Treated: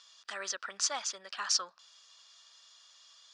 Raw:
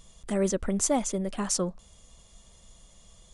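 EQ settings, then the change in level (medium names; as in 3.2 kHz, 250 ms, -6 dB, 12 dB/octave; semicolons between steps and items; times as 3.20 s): resonant high-pass 1.4 kHz, resonance Q 2.1; four-pole ladder low-pass 5.5 kHz, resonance 60%; band-stop 2.1 kHz, Q 8.7; +8.5 dB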